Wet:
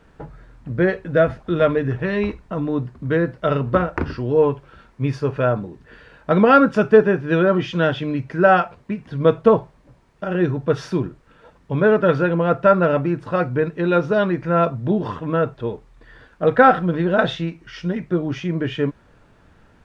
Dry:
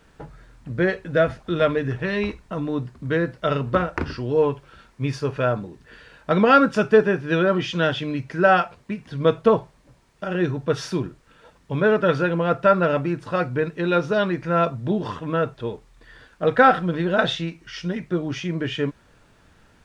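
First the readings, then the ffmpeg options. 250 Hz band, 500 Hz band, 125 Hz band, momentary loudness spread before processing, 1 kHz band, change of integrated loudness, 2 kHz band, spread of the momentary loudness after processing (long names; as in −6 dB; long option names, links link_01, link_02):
+3.5 dB, +3.0 dB, +3.5 dB, 12 LU, +2.0 dB, +2.5 dB, +0.5 dB, 12 LU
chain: -af "highshelf=frequency=2800:gain=-11,volume=3.5dB"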